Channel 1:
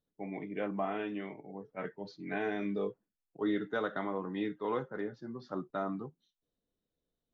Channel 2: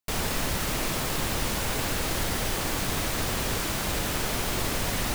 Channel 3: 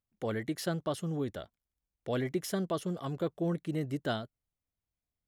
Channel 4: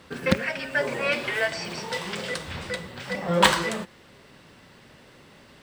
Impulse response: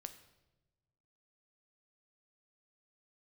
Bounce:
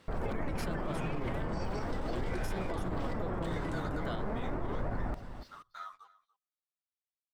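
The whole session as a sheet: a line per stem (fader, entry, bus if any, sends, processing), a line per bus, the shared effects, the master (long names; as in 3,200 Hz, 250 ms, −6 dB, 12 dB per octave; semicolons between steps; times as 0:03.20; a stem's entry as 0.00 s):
−9.0 dB, 0.00 s, send −13 dB, echo send −20 dB, high-pass filter 1,100 Hz 24 dB per octave; leveller curve on the samples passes 3; string-ensemble chorus
+2.5 dB, 0.00 s, send −22 dB, echo send −13.5 dB, flanger 0.4 Hz, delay 0.9 ms, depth 6.8 ms, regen +65%; Gaussian smoothing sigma 6.5 samples
−5.5 dB, 0.00 s, no send, no echo send, no processing
−10.0 dB, 0.00 s, no send, no echo send, downward compressor 6 to 1, threshold −34 dBFS, peak gain reduction 20.5 dB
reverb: on, pre-delay 7 ms
echo: single-tap delay 289 ms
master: brickwall limiter −26 dBFS, peak gain reduction 9 dB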